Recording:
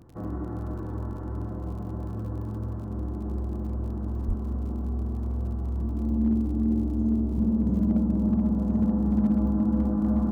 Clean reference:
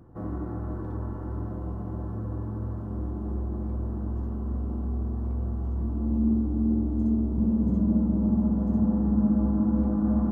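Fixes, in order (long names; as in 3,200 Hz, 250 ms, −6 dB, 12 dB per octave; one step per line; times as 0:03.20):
clipped peaks rebuilt −16 dBFS
click removal
0:04.27–0:04.39: high-pass filter 140 Hz 24 dB per octave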